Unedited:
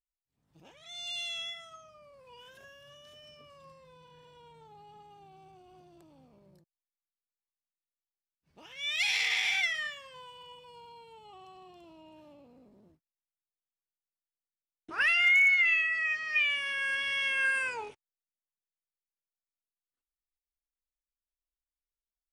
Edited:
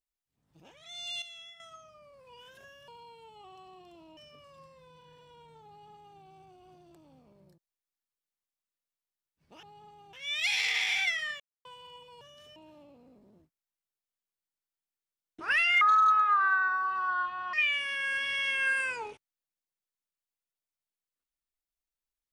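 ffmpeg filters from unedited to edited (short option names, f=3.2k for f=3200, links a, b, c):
-filter_complex "[0:a]asplit=13[a][b][c][d][e][f][g][h][i][j][k][l][m];[a]atrim=end=1.222[n];[b]atrim=start=1.218:end=1.602,asetpts=PTS-STARTPTS,volume=-10.5dB[o];[c]atrim=start=1.598:end=2.882[p];[d]atrim=start=10.768:end=12.062[q];[e]atrim=start=3.228:end=8.692[r];[f]atrim=start=4.748:end=5.252[s];[g]atrim=start=8.688:end=9.96,asetpts=PTS-STARTPTS,afade=t=out:st=1.268:d=0.004:c=hsin[t];[h]atrim=start=9.96:end=10.21,asetpts=PTS-STARTPTS,volume=0[u];[i]atrim=start=10.21:end=10.772,asetpts=PTS-STARTPTS,afade=t=in:d=0.004:c=hsin[v];[j]atrim=start=2.878:end=3.232[w];[k]atrim=start=12.058:end=15.314[x];[l]atrim=start=15.31:end=16.31,asetpts=PTS-STARTPTS,asetrate=25578,aresample=44100,atrim=end_sample=76034,asetpts=PTS-STARTPTS[y];[m]atrim=start=16.306[z];[n][o]acrossfade=d=0.004:c1=hsin:c2=hsin[aa];[aa][p]acrossfade=d=0.004:c1=hsin:c2=hsin[ab];[ab][q]acrossfade=d=0.004:c1=hsin:c2=hsin[ac];[ac][r]acrossfade=d=0.004:c1=hsin:c2=hsin[ad];[ad][s]acrossfade=d=0.004:c1=hsin:c2=hsin[ae];[t][u][v]concat=n=3:v=0:a=1[af];[ae][af]acrossfade=d=0.004:c1=hsin:c2=hsin[ag];[ag][w]acrossfade=d=0.004:c1=hsin:c2=hsin[ah];[ah][x]acrossfade=d=0.004:c1=hsin:c2=hsin[ai];[ai][y]acrossfade=d=0.004:c1=hsin:c2=hsin[aj];[aj][z]acrossfade=d=0.004:c1=hsin:c2=hsin"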